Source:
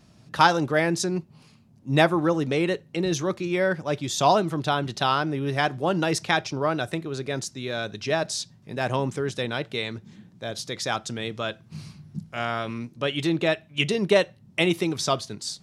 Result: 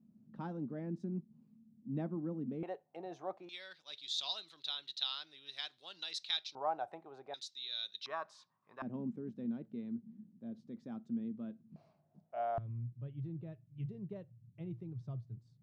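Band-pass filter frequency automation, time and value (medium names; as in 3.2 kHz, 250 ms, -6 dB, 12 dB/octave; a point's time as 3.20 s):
band-pass filter, Q 7.9
220 Hz
from 2.63 s 740 Hz
from 3.49 s 3.9 kHz
from 6.55 s 800 Hz
from 7.34 s 3.8 kHz
from 8.06 s 1.1 kHz
from 8.82 s 230 Hz
from 11.76 s 660 Hz
from 12.58 s 120 Hz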